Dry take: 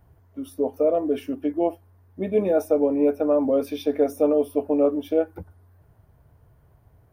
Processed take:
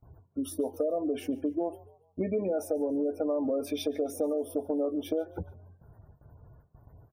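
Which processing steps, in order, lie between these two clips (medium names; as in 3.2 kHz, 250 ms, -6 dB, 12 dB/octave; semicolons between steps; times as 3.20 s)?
peaking EQ 8 kHz +7 dB 1.1 oct; gate with hold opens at -47 dBFS; in parallel at -1.5 dB: peak limiter -18.5 dBFS, peak gain reduction 9 dB; on the sum: spectral gate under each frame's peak -30 dB strong; compression, threshold -24 dBFS, peak gain reduction 11 dB; on a send: frequency-shifting echo 143 ms, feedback 41%, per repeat +44 Hz, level -22 dB; on the sum: trim -3 dB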